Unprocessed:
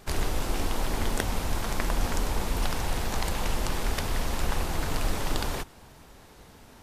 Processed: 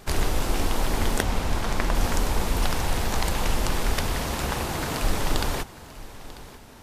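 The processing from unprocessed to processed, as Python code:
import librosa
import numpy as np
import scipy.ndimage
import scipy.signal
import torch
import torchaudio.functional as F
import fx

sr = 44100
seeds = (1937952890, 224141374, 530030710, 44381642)

y = fx.high_shelf(x, sr, hz=8100.0, db=-8.5, at=(1.22, 1.95))
y = fx.highpass(y, sr, hz=fx.line((4.12, 42.0), (5.01, 110.0)), slope=12, at=(4.12, 5.01), fade=0.02)
y = y + 10.0 ** (-18.0 / 20.0) * np.pad(y, (int(942 * sr / 1000.0), 0))[:len(y)]
y = y * 10.0 ** (4.0 / 20.0)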